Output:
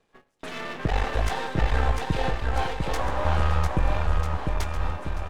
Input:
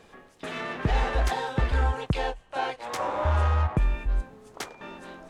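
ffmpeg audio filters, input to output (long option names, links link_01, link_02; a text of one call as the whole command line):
ffmpeg -i in.wav -af "aeval=exprs='if(lt(val(0),0),0.251*val(0),val(0))':channel_layout=same,agate=range=-15dB:threshold=-49dB:ratio=16:detection=peak,aecho=1:1:700|1295|1801|2231|2596:0.631|0.398|0.251|0.158|0.1,volume=2.5dB" out.wav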